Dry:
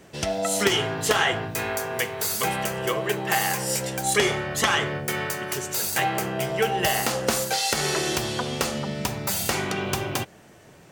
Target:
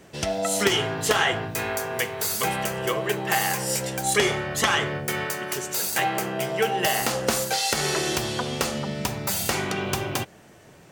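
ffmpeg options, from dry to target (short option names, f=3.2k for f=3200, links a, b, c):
-filter_complex "[0:a]asettb=1/sr,asplit=3[a][b][c];[a]atrim=end=5.244[d];[b]atrim=start=5.24:end=7.02,asetpts=PTS-STARTPTS,afade=t=in:d=0.004:c=qsin,afade=t=out:st=1.776:d=0.004:c=qsin,highpass=140[e];[c]atrim=start=7.016[f];[d][e]acrossfade=d=0.004:c1=hsin:c2=qsin[g];[g][f]acrossfade=d=0.004:c1=qsin:c2=hsin"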